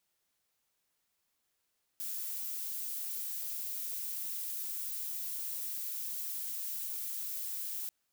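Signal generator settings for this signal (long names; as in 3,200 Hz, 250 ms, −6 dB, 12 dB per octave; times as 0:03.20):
noise violet, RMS −38.5 dBFS 5.89 s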